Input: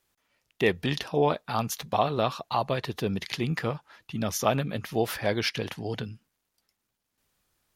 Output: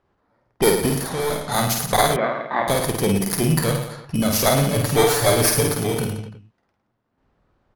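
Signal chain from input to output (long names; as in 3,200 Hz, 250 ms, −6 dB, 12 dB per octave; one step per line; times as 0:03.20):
samples in bit-reversed order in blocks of 16 samples
0:04.69–0:05.77: comb filter 6.9 ms, depth 99%
in parallel at −0.5 dB: downward compressor, threshold −32 dBFS, peak gain reduction 14.5 dB
on the sum: harmonic generator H 3 −19 dB, 4 −10 dB, 5 −14 dB, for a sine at −5.5 dBFS
0:00.89–0:01.52: hard clipping −26 dBFS, distortion −12 dB
on a send: reverse bouncing-ball delay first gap 50 ms, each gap 1.15×, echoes 5
on the sum: low-pass that shuts in the quiet parts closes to 1,400 Hz, open at −22 dBFS
0:02.16–0:02.68: loudspeaker in its box 240–2,300 Hz, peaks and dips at 420 Hz −7 dB, 790 Hz −4 dB, 1,300 Hz −4 dB
level +2 dB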